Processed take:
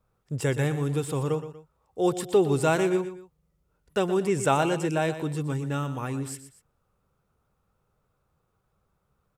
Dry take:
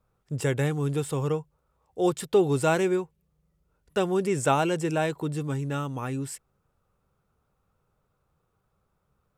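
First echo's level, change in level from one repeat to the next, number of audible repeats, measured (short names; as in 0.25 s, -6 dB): -12.0 dB, -8.0 dB, 2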